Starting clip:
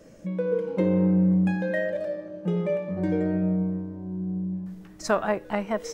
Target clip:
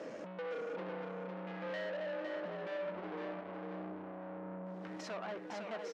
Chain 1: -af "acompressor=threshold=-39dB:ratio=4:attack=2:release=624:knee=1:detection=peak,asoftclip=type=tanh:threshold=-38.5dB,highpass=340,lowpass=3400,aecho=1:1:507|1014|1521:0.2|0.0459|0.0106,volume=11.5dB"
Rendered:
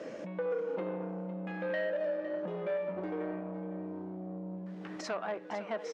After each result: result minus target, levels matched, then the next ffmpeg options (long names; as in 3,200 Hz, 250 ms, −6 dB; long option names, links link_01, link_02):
echo-to-direct −8.5 dB; soft clipping: distortion −8 dB
-af "acompressor=threshold=-39dB:ratio=4:attack=2:release=624:knee=1:detection=peak,asoftclip=type=tanh:threshold=-38.5dB,highpass=340,lowpass=3400,aecho=1:1:507|1014|1521:0.531|0.122|0.0281,volume=11.5dB"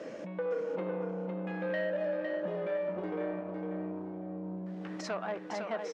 soft clipping: distortion −8 dB
-af "acompressor=threshold=-39dB:ratio=4:attack=2:release=624:knee=1:detection=peak,asoftclip=type=tanh:threshold=-49.5dB,highpass=340,lowpass=3400,aecho=1:1:507|1014|1521:0.531|0.122|0.0281,volume=11.5dB"